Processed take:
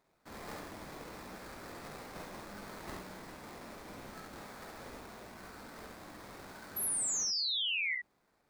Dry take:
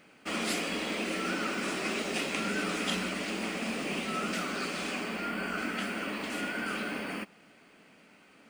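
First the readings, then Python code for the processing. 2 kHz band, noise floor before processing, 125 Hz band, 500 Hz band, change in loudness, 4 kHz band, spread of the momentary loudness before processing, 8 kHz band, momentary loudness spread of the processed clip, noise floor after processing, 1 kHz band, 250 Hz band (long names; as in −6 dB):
−9.0 dB, −59 dBFS, −10.0 dB, −13.0 dB, −4.5 dB, −1.5 dB, 4 LU, +4.0 dB, 19 LU, −75 dBFS, −11.5 dB, −16.5 dB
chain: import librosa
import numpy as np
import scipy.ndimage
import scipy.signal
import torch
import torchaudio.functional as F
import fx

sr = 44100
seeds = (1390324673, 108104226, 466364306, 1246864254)

p1 = fx.tone_stack(x, sr, knobs='5-5-5')
p2 = fx.notch(p1, sr, hz=1400.0, q=5.3)
p3 = fx.schmitt(p2, sr, flips_db=-55.5)
p4 = p2 + (p3 * librosa.db_to_amplitude(-10.0))
p5 = fx.sample_hold(p4, sr, seeds[0], rate_hz=3000.0, jitter_pct=20)
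p6 = fx.spec_paint(p5, sr, seeds[1], shape='fall', start_s=6.76, length_s=1.19, low_hz=1900.0, high_hz=12000.0, level_db=-30.0)
p7 = p6 + fx.room_early_taps(p6, sr, ms=(49, 69), db=(-5.0, -4.5), dry=0)
y = p7 * librosa.db_to_amplitude(-6.0)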